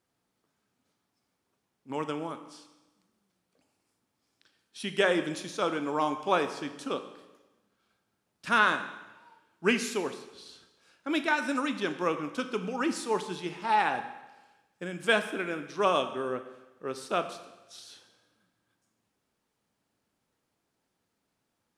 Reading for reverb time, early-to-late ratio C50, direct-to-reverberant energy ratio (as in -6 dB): 1.1 s, 10.5 dB, 8.5 dB